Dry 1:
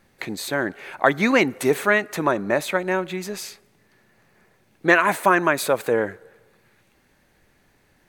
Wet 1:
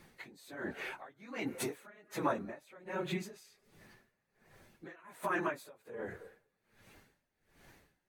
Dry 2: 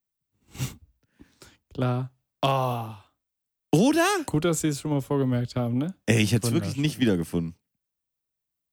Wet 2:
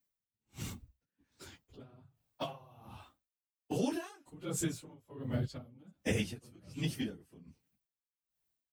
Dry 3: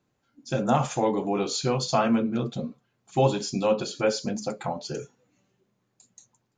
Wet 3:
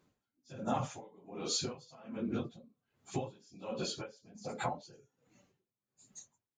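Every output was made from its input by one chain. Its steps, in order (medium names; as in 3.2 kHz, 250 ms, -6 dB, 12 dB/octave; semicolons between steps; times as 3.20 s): phase randomisation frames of 50 ms; compression 5:1, threshold -32 dBFS; logarithmic tremolo 1.3 Hz, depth 26 dB; trim +2 dB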